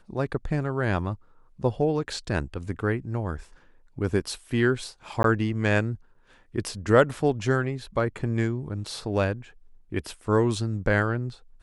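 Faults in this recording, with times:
5.23–5.24 s: dropout 12 ms

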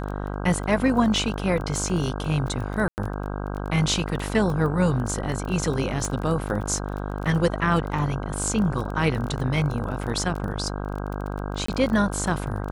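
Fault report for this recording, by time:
buzz 50 Hz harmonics 32 -30 dBFS
crackle 17 per s -29 dBFS
2.88–2.98 s: dropout 99 ms
6.05 s: pop
11.66–11.68 s: dropout 24 ms

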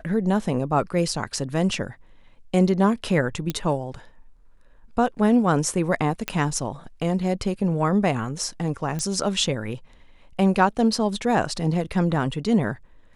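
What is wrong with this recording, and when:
3.50 s: pop -11 dBFS
6.28 s: pop -10 dBFS
8.99 s: pop -16 dBFS

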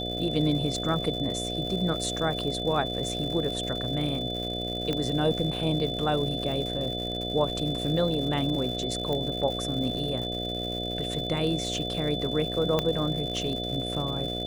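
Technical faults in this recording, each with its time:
buzz 60 Hz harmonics 12 -34 dBFS
crackle 200 per s -35 dBFS
whine 3.5 kHz -33 dBFS
4.93 s: pop -16 dBFS
9.13 s: pop -19 dBFS
12.79 s: pop -11 dBFS

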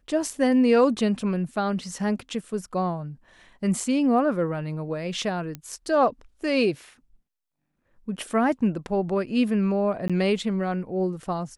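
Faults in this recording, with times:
5.55 s: pop -19 dBFS
10.08–10.10 s: dropout 16 ms

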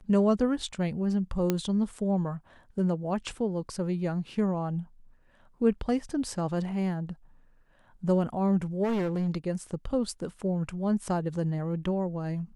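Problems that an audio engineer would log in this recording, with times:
1.50 s: pop -12 dBFS
8.83–9.29 s: clipped -25 dBFS

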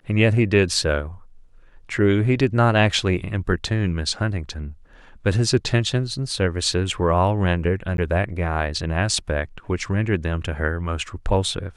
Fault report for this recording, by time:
7.97–7.98 s: dropout

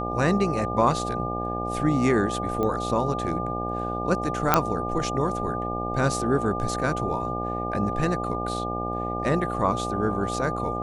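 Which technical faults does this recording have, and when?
buzz 60 Hz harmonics 14 -31 dBFS
whine 1.2 kHz -30 dBFS
2.63 s: pop -16 dBFS
4.54 s: pop -2 dBFS

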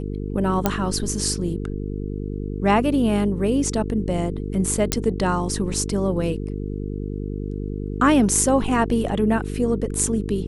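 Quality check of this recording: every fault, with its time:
buzz 50 Hz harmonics 9 -28 dBFS
0.66 s: pop -4 dBFS
4.92 s: pop -3 dBFS

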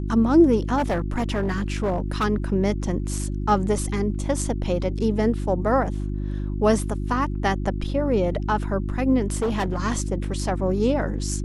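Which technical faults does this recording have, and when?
hum 50 Hz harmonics 7 -27 dBFS
0.77–2.25 s: clipped -18.5 dBFS
9.36–9.80 s: clipped -19.5 dBFS

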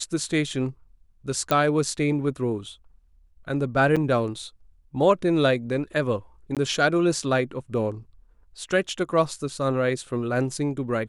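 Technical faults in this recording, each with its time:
1.51 s: pop -8 dBFS
3.96–3.97 s: dropout 6.2 ms
6.55–6.57 s: dropout 17 ms

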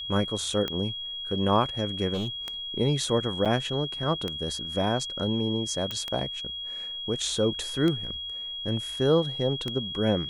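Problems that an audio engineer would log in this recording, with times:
tick 33 1/3 rpm -16 dBFS
whine 3.3 kHz -33 dBFS
2.13–2.28 s: clipped -25 dBFS
3.45–3.46 s: dropout 7.4 ms
5.91 s: pop -17 dBFS

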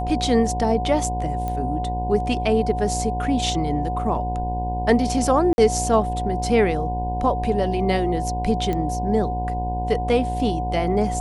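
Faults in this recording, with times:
buzz 60 Hz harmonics 17 -27 dBFS
whine 730 Hz -26 dBFS
1.48 s: pop -16 dBFS
5.53–5.58 s: dropout 51 ms
8.73 s: pop -14 dBFS

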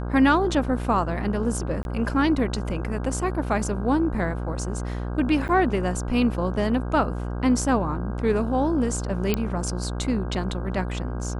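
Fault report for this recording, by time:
buzz 60 Hz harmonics 27 -29 dBFS
1.83–1.85 s: dropout 21 ms
5.48–5.49 s: dropout 8.9 ms
9.34 s: pop -8 dBFS

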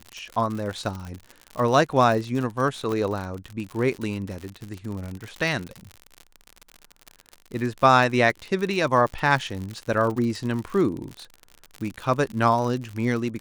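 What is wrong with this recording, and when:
crackle 72 per s -29 dBFS
2.92 s: pop -17 dBFS

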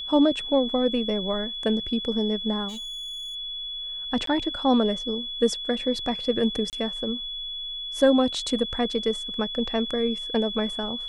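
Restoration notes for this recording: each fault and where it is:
whine 3.4 kHz -31 dBFS
2.68–3.36 s: clipped -33 dBFS
4.26–4.27 s: dropout 13 ms
6.70–6.73 s: dropout 28 ms

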